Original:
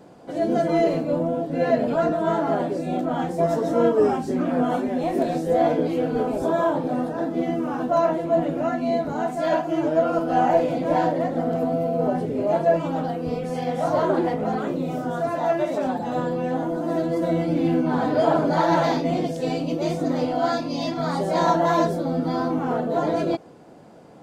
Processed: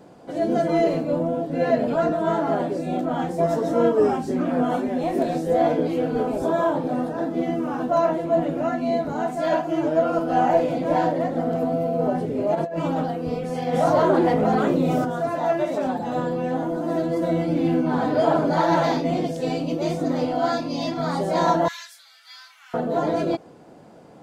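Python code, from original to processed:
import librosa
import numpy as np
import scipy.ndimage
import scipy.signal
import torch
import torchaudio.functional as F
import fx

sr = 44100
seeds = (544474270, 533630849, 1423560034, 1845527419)

y = fx.over_compress(x, sr, threshold_db=-25.0, ratio=-1.0, at=(12.54, 13.03), fade=0.02)
y = fx.env_flatten(y, sr, amount_pct=50, at=(13.72, 15.04), fade=0.02)
y = fx.cheby2_highpass(y, sr, hz=330.0, order=4, stop_db=80, at=(21.68, 22.74))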